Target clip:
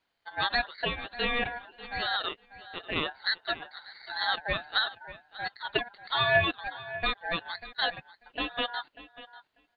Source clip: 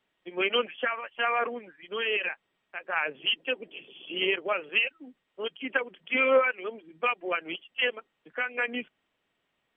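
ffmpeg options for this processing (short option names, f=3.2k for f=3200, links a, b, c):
-filter_complex "[0:a]asplit=2[a][b];[b]adelay=592,lowpass=f=1.6k:p=1,volume=-14dB,asplit=2[c][d];[d]adelay=592,lowpass=f=1.6k:p=1,volume=0.16[e];[a][c][e]amix=inputs=3:normalize=0,aeval=exprs='val(0)*sin(2*PI*1200*n/s)':c=same,volume=1dB"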